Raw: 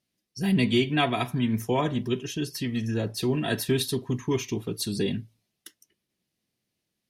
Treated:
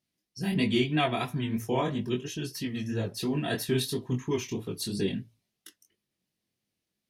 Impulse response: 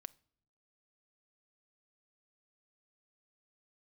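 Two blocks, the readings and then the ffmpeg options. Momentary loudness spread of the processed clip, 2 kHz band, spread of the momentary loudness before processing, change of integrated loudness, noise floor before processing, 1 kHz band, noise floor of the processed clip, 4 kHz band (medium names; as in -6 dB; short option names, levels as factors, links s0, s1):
8 LU, -3.0 dB, 8 LU, -3.0 dB, -82 dBFS, -2.5 dB, -85 dBFS, -3.0 dB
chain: -af "flanger=delay=19:depth=5.2:speed=3"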